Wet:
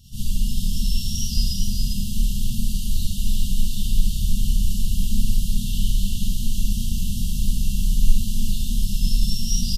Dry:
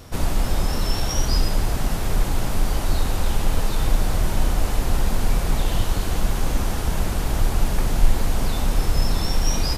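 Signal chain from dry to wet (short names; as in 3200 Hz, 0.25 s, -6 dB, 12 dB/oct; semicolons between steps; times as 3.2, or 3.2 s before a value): echo 0.4 s -5.5 dB; Schroeder reverb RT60 0.38 s, combs from 31 ms, DRR -6.5 dB; FFT band-reject 250–2700 Hz; gain -8 dB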